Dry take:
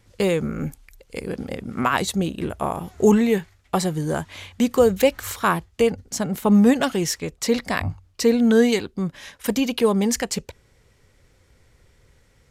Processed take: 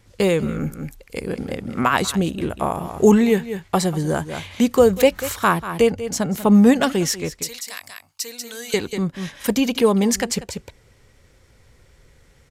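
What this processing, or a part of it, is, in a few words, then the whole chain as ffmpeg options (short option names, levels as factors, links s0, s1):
ducked delay: -filter_complex "[0:a]asettb=1/sr,asplit=3[s0][s1][s2];[s0]atrim=end=7.404[s3];[s1]atrim=start=7.4:end=8.74,asetpts=PTS-STARTPTS,afade=t=in:d=0.004:c=qsin,afade=t=out:st=1.336:d=0.004:c=qsin,aderivative[s4];[s2]atrim=start=8.736[s5];[s3][s4]acrossfade=d=0.004:c1=hsin:c2=qsin[s6];[s6][s5]acrossfade=d=0.004:c1=qsin:c2=hsin,asplit=3[s7][s8][s9];[s8]adelay=190,volume=0.596[s10];[s9]apad=whole_len=559813[s11];[s10][s11]sidechaincompress=threshold=0.0141:ratio=8:attack=29:release=169[s12];[s7][s12]amix=inputs=2:normalize=0,volume=1.33"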